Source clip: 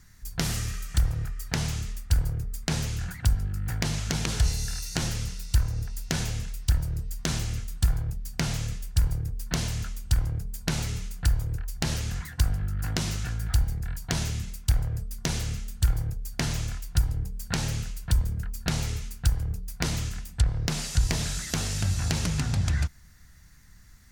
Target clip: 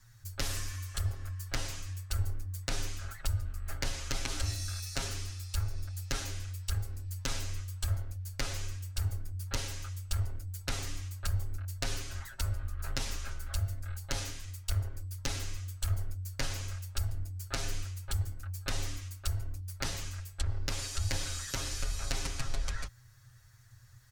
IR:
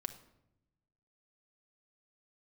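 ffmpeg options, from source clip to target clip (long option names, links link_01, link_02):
-af "aecho=1:1:7.4:0.97,afreqshift=-130,volume=-8dB"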